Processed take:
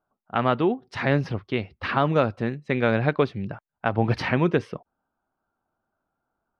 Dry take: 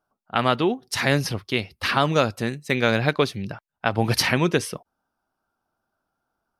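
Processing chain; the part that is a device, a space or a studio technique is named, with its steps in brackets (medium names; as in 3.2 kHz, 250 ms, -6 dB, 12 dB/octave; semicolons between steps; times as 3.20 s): phone in a pocket (low-pass 3.3 kHz 12 dB/octave; treble shelf 2.5 kHz -10.5 dB)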